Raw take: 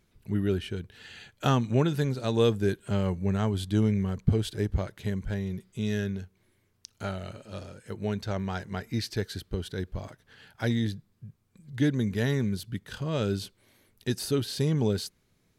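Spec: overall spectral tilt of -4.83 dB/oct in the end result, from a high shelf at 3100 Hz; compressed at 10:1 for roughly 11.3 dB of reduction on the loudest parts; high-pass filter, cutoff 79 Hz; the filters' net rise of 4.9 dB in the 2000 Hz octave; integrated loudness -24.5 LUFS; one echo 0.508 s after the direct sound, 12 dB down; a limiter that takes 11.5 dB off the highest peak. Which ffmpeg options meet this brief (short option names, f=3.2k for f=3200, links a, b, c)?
-af "highpass=79,equalizer=f=2k:t=o:g=4,highshelf=f=3.1k:g=7,acompressor=threshold=-29dB:ratio=10,alimiter=level_in=0.5dB:limit=-24dB:level=0:latency=1,volume=-0.5dB,aecho=1:1:508:0.251,volume=12.5dB"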